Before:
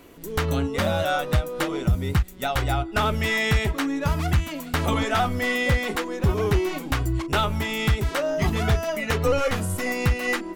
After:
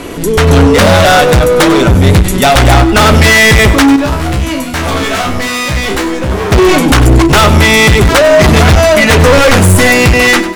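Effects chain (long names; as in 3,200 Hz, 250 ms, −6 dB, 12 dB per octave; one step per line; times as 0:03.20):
Butterworth low-pass 12,000 Hz 96 dB per octave
automatic gain control gain up to 16 dB
hard clipping −18 dBFS, distortion −4 dB
0:03.96–0:06.52: tuned comb filter 65 Hz, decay 0.32 s, harmonics all, mix 90%
boost into a limiter +28.5 dB
feedback echo at a low word length 98 ms, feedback 35%, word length 6 bits, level −13 dB
level −3 dB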